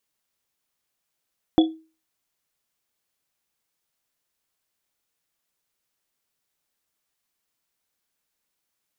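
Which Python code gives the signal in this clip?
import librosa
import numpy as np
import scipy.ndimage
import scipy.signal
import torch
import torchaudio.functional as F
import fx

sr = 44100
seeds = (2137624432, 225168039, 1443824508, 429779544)

y = fx.risset_drum(sr, seeds[0], length_s=1.1, hz=320.0, decay_s=0.34, noise_hz=3400.0, noise_width_hz=110.0, noise_pct=15)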